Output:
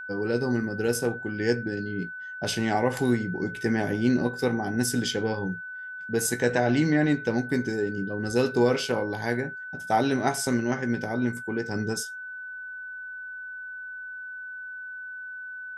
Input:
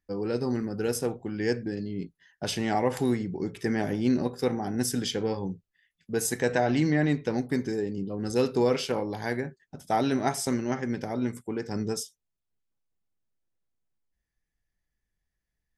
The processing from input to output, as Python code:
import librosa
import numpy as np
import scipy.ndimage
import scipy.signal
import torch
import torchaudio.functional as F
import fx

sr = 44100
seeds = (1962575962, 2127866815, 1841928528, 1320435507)

y = fx.doubler(x, sr, ms=17.0, db=-11.0)
y = y + 10.0 ** (-37.0 / 20.0) * np.sin(2.0 * np.pi * 1500.0 * np.arange(len(y)) / sr)
y = F.gain(torch.from_numpy(y), 1.5).numpy()